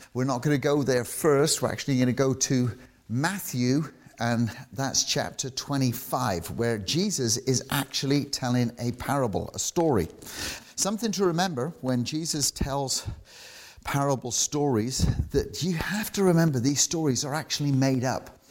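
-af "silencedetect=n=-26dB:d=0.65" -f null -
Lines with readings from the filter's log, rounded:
silence_start: 13.09
silence_end: 13.88 | silence_duration: 0.79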